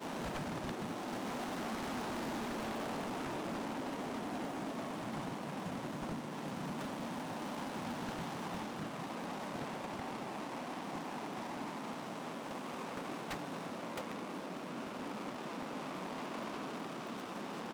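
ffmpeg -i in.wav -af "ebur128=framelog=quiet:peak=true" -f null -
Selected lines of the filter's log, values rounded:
Integrated loudness:
  I:         -41.6 LUFS
  Threshold: -51.6 LUFS
Loudness range:
  LRA:         3.0 LU
  Threshold: -61.6 LUFS
  LRA low:   -42.8 LUFS
  LRA high:  -39.8 LUFS
True peak:
  Peak:      -33.3 dBFS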